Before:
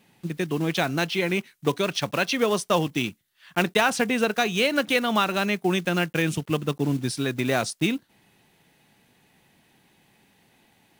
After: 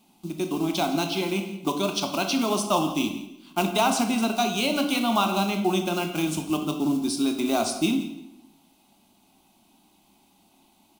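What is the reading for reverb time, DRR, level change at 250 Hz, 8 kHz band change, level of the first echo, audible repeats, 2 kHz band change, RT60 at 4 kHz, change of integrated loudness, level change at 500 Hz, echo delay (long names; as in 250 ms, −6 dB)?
0.85 s, 4.5 dB, +2.0 dB, +2.5 dB, −16.0 dB, 2, −6.5 dB, 0.70 s, −0.5 dB, −2.5 dB, 169 ms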